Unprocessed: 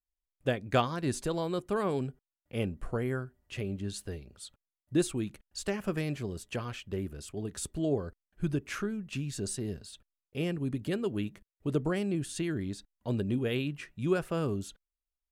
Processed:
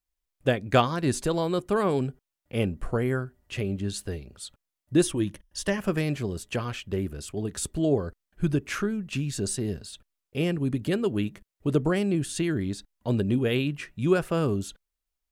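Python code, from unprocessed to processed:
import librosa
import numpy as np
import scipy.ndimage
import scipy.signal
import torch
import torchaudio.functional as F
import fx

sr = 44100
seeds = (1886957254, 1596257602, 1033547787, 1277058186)

y = fx.ripple_eq(x, sr, per_octave=1.2, db=8, at=(5.03, 5.78))
y = y * 10.0 ** (6.0 / 20.0)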